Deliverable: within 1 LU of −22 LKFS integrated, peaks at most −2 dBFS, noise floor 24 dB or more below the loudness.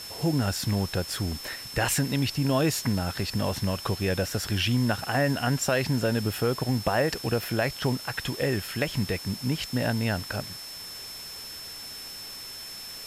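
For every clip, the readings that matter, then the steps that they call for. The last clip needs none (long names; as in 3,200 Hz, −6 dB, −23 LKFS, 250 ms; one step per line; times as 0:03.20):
interfering tone 5,300 Hz; level of the tone −39 dBFS; background noise floor −40 dBFS; target noise floor −52 dBFS; integrated loudness −28.0 LKFS; sample peak −12.0 dBFS; target loudness −22.0 LKFS
→ notch filter 5,300 Hz, Q 30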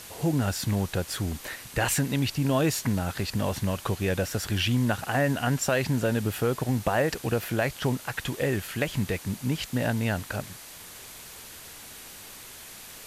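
interfering tone none found; background noise floor −45 dBFS; target noise floor −52 dBFS
→ broadband denoise 7 dB, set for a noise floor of −45 dBFS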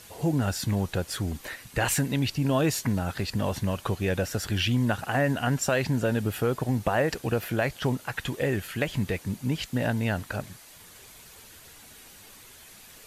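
background noise floor −50 dBFS; target noise floor −52 dBFS
→ broadband denoise 6 dB, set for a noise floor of −50 dBFS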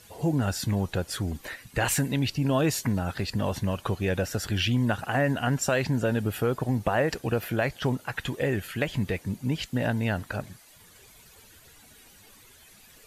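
background noise floor −54 dBFS; integrated loudness −28.0 LKFS; sample peak −12.0 dBFS; target loudness −22.0 LKFS
→ level +6 dB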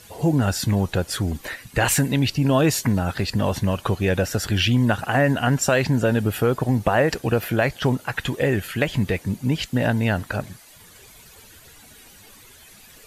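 integrated loudness −22.0 LKFS; sample peak −6.0 dBFS; background noise floor −48 dBFS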